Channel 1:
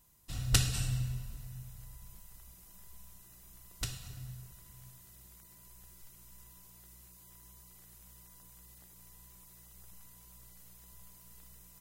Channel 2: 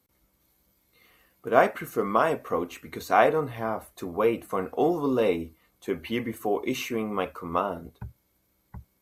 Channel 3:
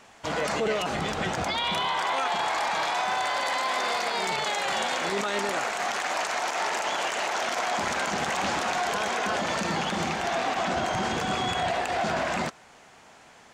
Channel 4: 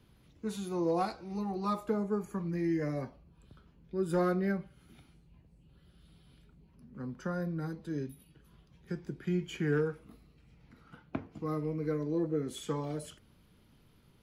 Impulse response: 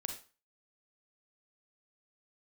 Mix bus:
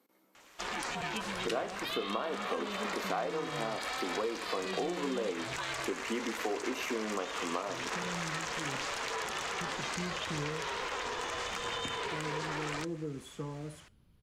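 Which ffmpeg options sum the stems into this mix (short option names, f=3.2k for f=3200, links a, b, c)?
-filter_complex "[0:a]bandpass=f=2.2k:t=q:w=1.4:csg=0,adelay=950,volume=2.5dB[a];[1:a]highpass=f=230:w=0.5412,highpass=f=230:w=1.3066,highshelf=f=2.9k:g=-10,acompressor=threshold=-34dB:ratio=1.5,volume=2.5dB,asplit=2[b][c];[c]volume=-9dB[d];[2:a]highpass=f=1.2k:p=1,aeval=exprs='val(0)*sin(2*PI*270*n/s)':c=same,aphaser=in_gain=1:out_gain=1:delay=4.3:decay=0.23:speed=0.79:type=sinusoidal,adelay=350,volume=-0.5dB[e];[3:a]lowshelf=f=140:g=10,adelay=700,volume=-10dB,asplit=2[f][g];[g]volume=-7.5dB[h];[4:a]atrim=start_sample=2205[i];[d][h]amix=inputs=2:normalize=0[j];[j][i]afir=irnorm=-1:irlink=0[k];[a][b][e][f][k]amix=inputs=5:normalize=0,acompressor=threshold=-32dB:ratio=5"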